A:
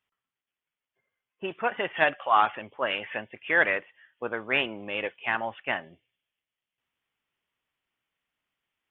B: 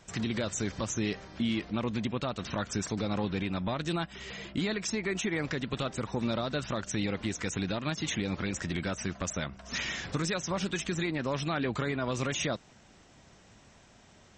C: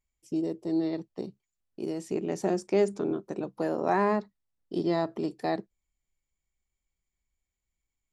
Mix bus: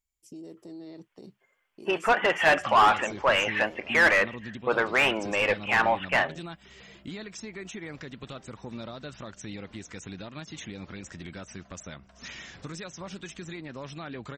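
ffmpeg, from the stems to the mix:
ffmpeg -i stem1.wav -i stem2.wav -i stem3.wav -filter_complex "[0:a]asplit=2[link_01][link_02];[link_02]highpass=frequency=720:poles=1,volume=22dB,asoftclip=type=tanh:threshold=-8dB[link_03];[link_01][link_03]amix=inputs=2:normalize=0,lowpass=frequency=1900:poles=1,volume=-6dB,adelay=450,volume=-2dB[link_04];[1:a]adelay=2500,volume=-8dB[link_05];[2:a]highshelf=frequency=3700:gain=8.5,alimiter=level_in=7dB:limit=-24dB:level=0:latency=1:release=75,volume=-7dB,volume=-5.5dB[link_06];[link_04][link_05][link_06]amix=inputs=3:normalize=0" out.wav

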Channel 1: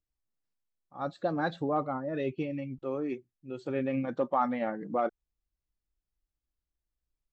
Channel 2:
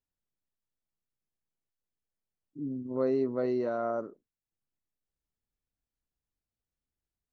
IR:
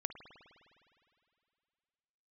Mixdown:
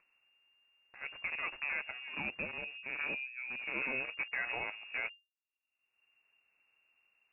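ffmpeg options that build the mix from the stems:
-filter_complex "[0:a]equalizer=frequency=960:width=0.35:gain=-6,aexciter=amount=8.3:drive=7.3:freq=2200,acrusher=bits=6:dc=4:mix=0:aa=0.000001,volume=-4.5dB[link_01];[1:a]volume=-13.5dB[link_02];[link_01][link_02]amix=inputs=2:normalize=0,lowpass=frequency=2400:width_type=q:width=0.5098,lowpass=frequency=2400:width_type=q:width=0.6013,lowpass=frequency=2400:width_type=q:width=0.9,lowpass=frequency=2400:width_type=q:width=2.563,afreqshift=-2800,acompressor=mode=upward:threshold=-49dB:ratio=2.5"

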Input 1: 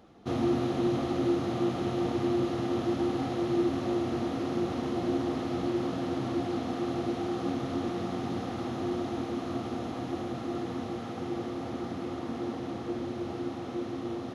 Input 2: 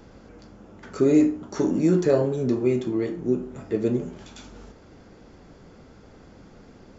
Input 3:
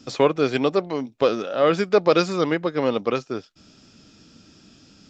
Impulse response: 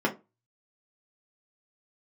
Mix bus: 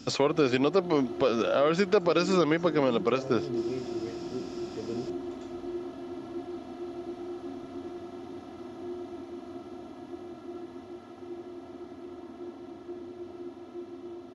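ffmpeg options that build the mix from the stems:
-filter_complex "[0:a]aecho=1:1:3:0.73,volume=-13.5dB,asplit=2[link_01][link_02];[link_02]volume=-23dB[link_03];[1:a]adelay=1050,volume=-13.5dB[link_04];[2:a]volume=2.5dB[link_05];[3:a]atrim=start_sample=2205[link_06];[link_03][link_06]afir=irnorm=-1:irlink=0[link_07];[link_01][link_04][link_05][link_07]amix=inputs=4:normalize=0,alimiter=limit=-13.5dB:level=0:latency=1:release=170"

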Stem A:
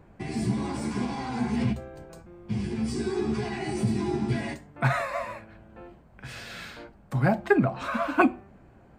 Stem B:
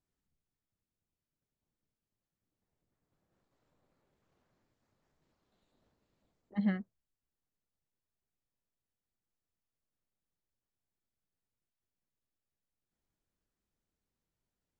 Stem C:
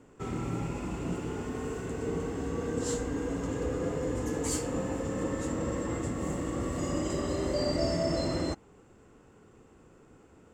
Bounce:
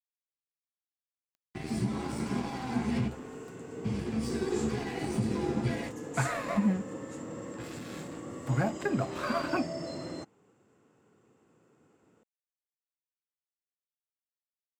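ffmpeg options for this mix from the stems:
ffmpeg -i stem1.wav -i stem2.wav -i stem3.wav -filter_complex "[0:a]acompressor=mode=upward:threshold=-48dB:ratio=2.5,adelay=1350,volume=-2dB[link_01];[1:a]tiltshelf=frequency=970:gain=8,volume=2.5dB[link_02];[2:a]highpass=frequency=110:width=0.5412,highpass=frequency=110:width=1.3066,adelay=1700,volume=-8dB[link_03];[link_01][link_02]amix=inputs=2:normalize=0,aeval=exprs='sgn(val(0))*max(abs(val(0))-0.00668,0)':channel_layout=same,alimiter=limit=-18.5dB:level=0:latency=1:release=226,volume=0dB[link_04];[link_03][link_04]amix=inputs=2:normalize=0" out.wav

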